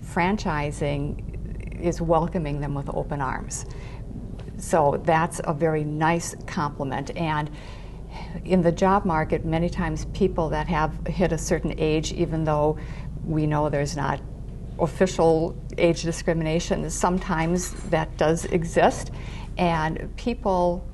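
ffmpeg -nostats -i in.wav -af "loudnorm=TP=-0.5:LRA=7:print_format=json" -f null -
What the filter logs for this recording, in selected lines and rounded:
"input_i" : "-24.6",
"input_tp" : "-7.2",
"input_lra" : "2.5",
"input_thresh" : "-35.0",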